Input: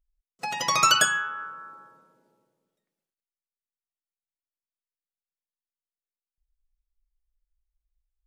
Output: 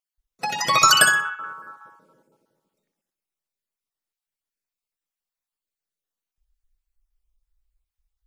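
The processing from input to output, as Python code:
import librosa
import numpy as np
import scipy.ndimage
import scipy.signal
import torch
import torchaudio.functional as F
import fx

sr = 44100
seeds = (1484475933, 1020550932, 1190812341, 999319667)

y = fx.spec_dropout(x, sr, seeds[0], share_pct=28)
y = fx.high_shelf(y, sr, hz=10000.0, db=10.0, at=(0.87, 1.69))
y = fx.echo_feedback(y, sr, ms=62, feedback_pct=23, wet_db=-9.0)
y = F.gain(torch.from_numpy(y), 5.5).numpy()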